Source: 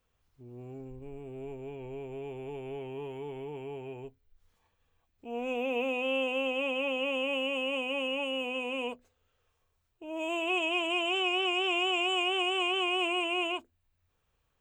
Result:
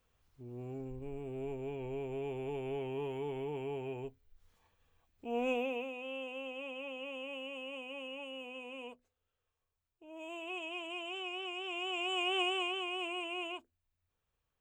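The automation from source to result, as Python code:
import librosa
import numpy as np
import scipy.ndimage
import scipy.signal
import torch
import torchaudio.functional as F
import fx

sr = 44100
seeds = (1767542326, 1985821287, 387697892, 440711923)

y = fx.gain(x, sr, db=fx.line((5.49, 1.0), (5.92, -12.0), (11.64, -12.0), (12.41, -2.5), (12.83, -9.0)))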